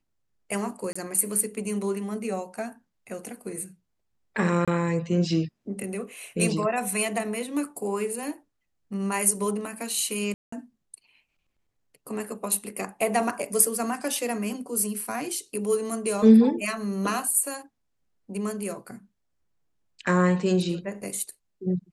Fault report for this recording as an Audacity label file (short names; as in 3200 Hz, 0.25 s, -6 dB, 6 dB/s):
0.930000	0.950000	gap 25 ms
4.650000	4.680000	gap 26 ms
10.340000	10.520000	gap 0.184 s